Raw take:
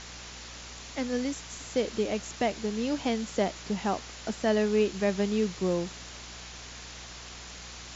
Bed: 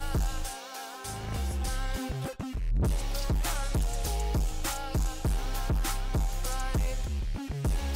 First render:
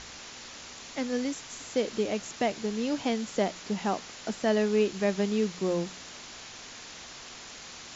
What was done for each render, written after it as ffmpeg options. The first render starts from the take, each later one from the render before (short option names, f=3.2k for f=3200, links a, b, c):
-af "bandreject=f=60:t=h:w=4,bandreject=f=120:t=h:w=4,bandreject=f=180:t=h:w=4"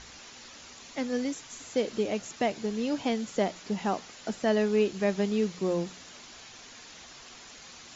-af "afftdn=nr=6:nf=-45"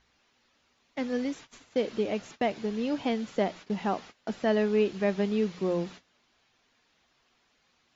-af "agate=range=-19dB:threshold=-43dB:ratio=16:detection=peak,lowpass=4.1k"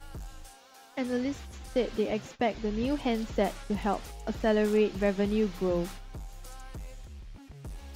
-filter_complex "[1:a]volume=-13.5dB[a];[0:a][a]amix=inputs=2:normalize=0"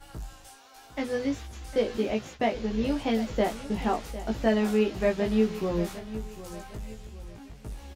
-filter_complex "[0:a]asplit=2[a][b];[b]adelay=18,volume=-2.5dB[c];[a][c]amix=inputs=2:normalize=0,aecho=1:1:754|1508|2262:0.188|0.0697|0.0258"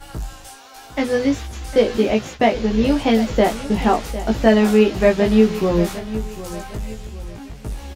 -af "volume=10.5dB,alimiter=limit=-3dB:level=0:latency=1"